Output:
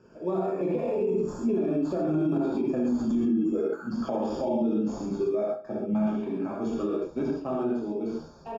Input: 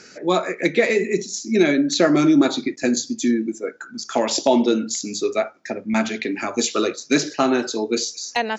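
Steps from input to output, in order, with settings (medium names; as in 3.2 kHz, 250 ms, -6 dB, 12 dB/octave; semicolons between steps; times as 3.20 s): Doppler pass-by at 2.83 s, 14 m/s, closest 8.1 m; in parallel at -8 dB: sample-and-hold 15×; on the sum: gated-style reverb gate 160 ms flat, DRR -5 dB; compression 4:1, threshold -22 dBFS, peak gain reduction 13.5 dB; on a send: feedback delay 69 ms, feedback 47%, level -18 dB; on the sum: peak limiter -21 dBFS, peak gain reduction 10 dB; boxcar filter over 22 samples; bass shelf 170 Hz +3 dB; trim +2.5 dB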